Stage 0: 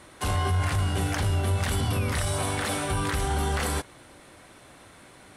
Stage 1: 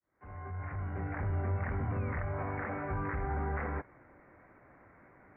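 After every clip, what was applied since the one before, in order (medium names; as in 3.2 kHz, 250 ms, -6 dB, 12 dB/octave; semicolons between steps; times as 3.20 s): fade-in on the opening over 1.38 s; steep low-pass 2.2 kHz 72 dB/octave; trim -7.5 dB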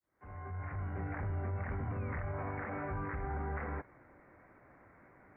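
peak limiter -28.5 dBFS, peak gain reduction 5 dB; trim -1.5 dB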